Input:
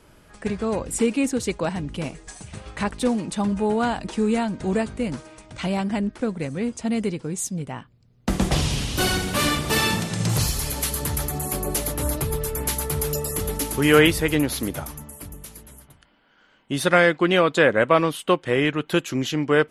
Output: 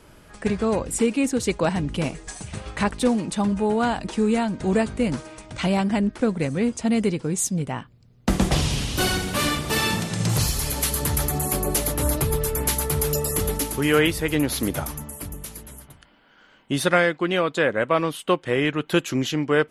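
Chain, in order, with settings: vocal rider within 4 dB 0.5 s

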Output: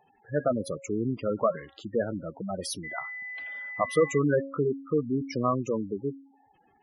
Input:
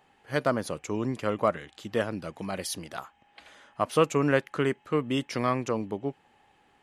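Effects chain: de-hum 274.2 Hz, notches 37; spectral gate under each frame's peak -10 dB strong; 2.83–4.17 whine 2000 Hz -37 dBFS; gain +1.5 dB

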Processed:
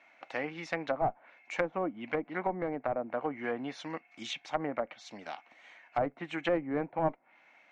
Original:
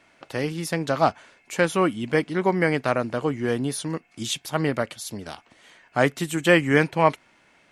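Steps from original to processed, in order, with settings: speaker cabinet 330–5600 Hz, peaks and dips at 400 Hz -10 dB, 760 Hz +6 dB, 2200 Hz +7 dB, 3300 Hz -4 dB, 4800 Hz -9 dB; one-sided clip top -18 dBFS; treble ducked by the level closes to 610 Hz, closed at -21 dBFS; gain -5 dB

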